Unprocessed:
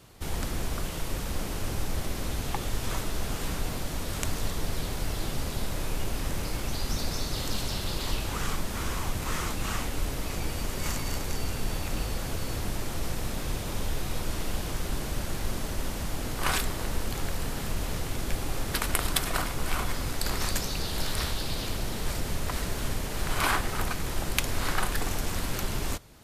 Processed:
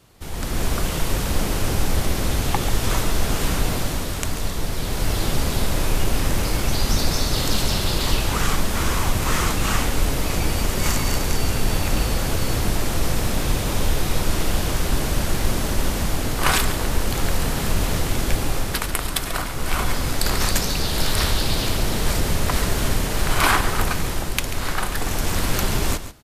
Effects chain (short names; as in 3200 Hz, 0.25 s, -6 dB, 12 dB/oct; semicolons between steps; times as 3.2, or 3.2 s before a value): AGC gain up to 11 dB; on a send: echo 0.139 s -12.5 dB; on the sum: gain -1 dB